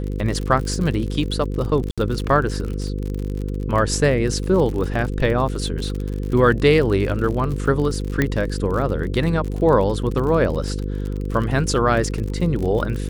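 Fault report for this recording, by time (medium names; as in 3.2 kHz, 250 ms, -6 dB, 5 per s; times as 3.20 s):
buzz 50 Hz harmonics 10 -25 dBFS
crackle 48 per s -26 dBFS
1.91–1.98 s: dropout 66 ms
8.22 s: pop -6 dBFS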